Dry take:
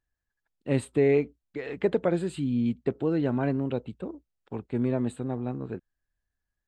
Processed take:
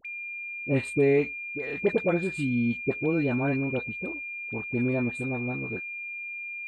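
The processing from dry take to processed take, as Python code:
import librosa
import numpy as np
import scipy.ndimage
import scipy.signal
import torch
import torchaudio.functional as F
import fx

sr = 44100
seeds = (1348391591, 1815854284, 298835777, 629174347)

y = x + 10.0 ** (-34.0 / 20.0) * np.sin(2.0 * np.pi * 2400.0 * np.arange(len(x)) / sr)
y = fx.dispersion(y, sr, late='highs', ms=54.0, hz=920.0)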